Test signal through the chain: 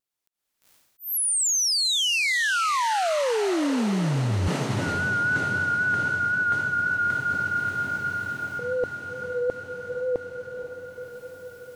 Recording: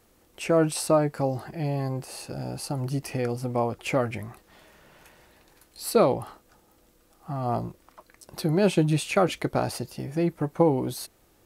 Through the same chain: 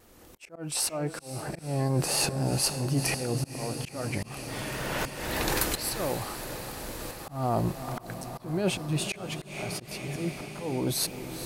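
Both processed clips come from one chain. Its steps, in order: recorder AGC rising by 21 dB/s; vibrato 3.8 Hz 40 cents; auto swell 0.475 s; diffused feedback echo 0.471 s, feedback 73%, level -11 dB; reverse; compressor 6:1, threshold -26 dBFS; reverse; auto swell 0.183 s; gain +3.5 dB

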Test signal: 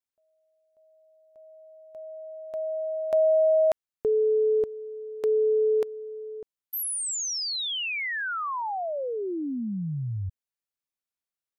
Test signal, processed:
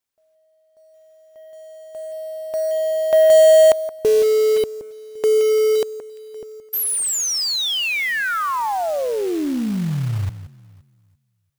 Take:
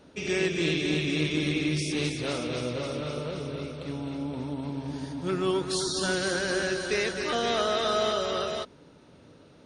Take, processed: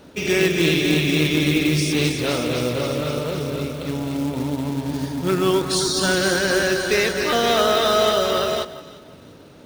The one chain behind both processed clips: echo with dull and thin repeats by turns 0.172 s, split 2000 Hz, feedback 51%, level -12.5 dB; short-mantissa float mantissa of 2-bit; gain +8.5 dB

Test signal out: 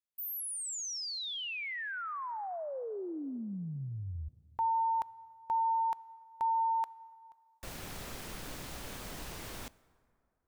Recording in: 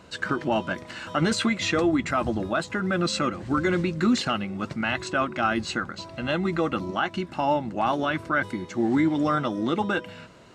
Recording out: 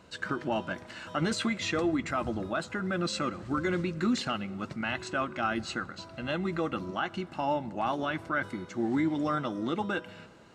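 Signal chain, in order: plate-style reverb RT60 2.4 s, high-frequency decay 0.5×, DRR 20 dB; gain -6 dB

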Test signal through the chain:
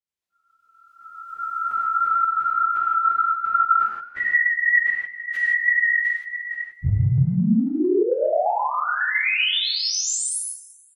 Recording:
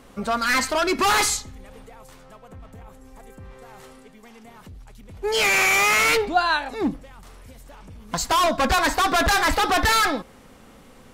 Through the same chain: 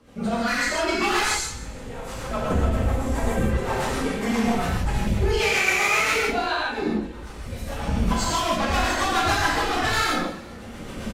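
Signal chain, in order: phase scrambler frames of 50 ms; recorder AGC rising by 20 dB/s; high shelf 9700 Hz -8.5 dB; rotary speaker horn 7.5 Hz; on a send: frequency-shifting echo 0.171 s, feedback 42%, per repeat +33 Hz, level -16 dB; on the sum: non-linear reverb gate 0.19 s flat, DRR -4.5 dB; gain -5 dB

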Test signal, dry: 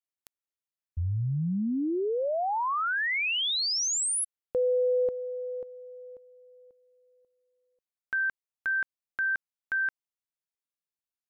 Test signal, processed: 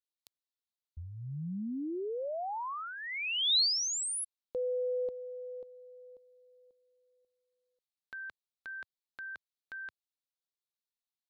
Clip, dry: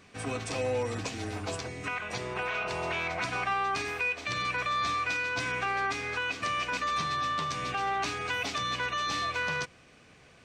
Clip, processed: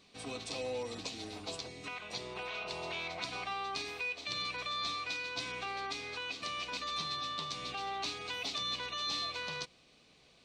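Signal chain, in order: fifteen-band EQ 100 Hz -9 dB, 1600 Hz -8 dB, 4000 Hz +11 dB; gain -7.5 dB

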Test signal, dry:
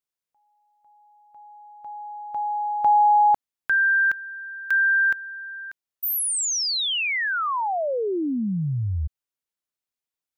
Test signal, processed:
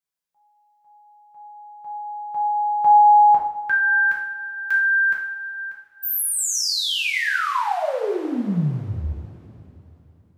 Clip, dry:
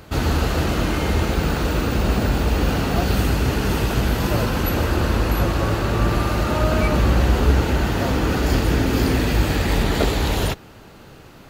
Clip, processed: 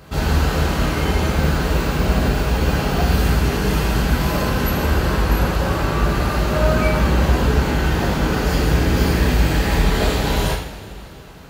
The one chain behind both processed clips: two-slope reverb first 0.58 s, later 3.5 s, from -18 dB, DRR -4 dB; gain -3.5 dB

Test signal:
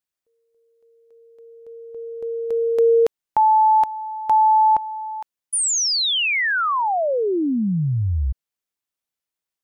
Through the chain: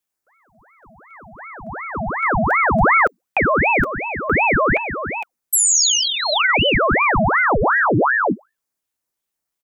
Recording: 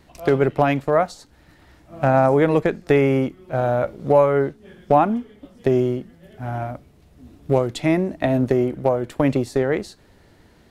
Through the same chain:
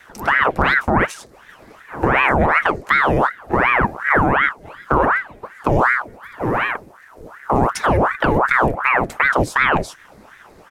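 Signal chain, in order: bell 3100 Hz -9.5 dB 0.86 oct; comb 6.5 ms, depth 35%; frequency shift -26 Hz; in parallel at +1 dB: negative-ratio compressor -21 dBFS, ratio -0.5; on the sum: ring modulator with a swept carrier 1000 Hz, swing 80%, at 2.7 Hz; gain +1 dB

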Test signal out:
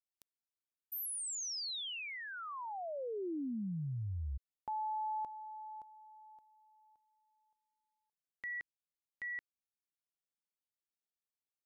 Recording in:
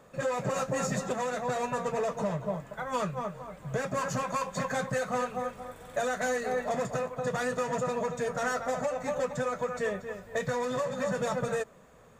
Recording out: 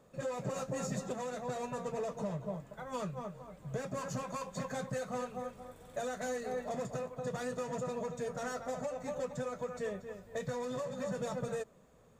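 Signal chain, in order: EQ curve 330 Hz 0 dB, 1700 Hz -7 dB, 4100 Hz -2 dB; gain -5 dB

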